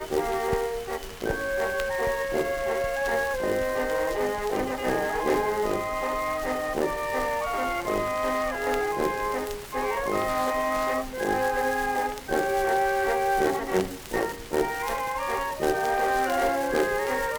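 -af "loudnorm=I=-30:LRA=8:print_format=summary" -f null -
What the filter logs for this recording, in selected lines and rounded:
Input Integrated:    -26.6 LUFS
Input True Peak:      -9.3 dBTP
Input LRA:             1.4 LU
Input Threshold:     -36.6 LUFS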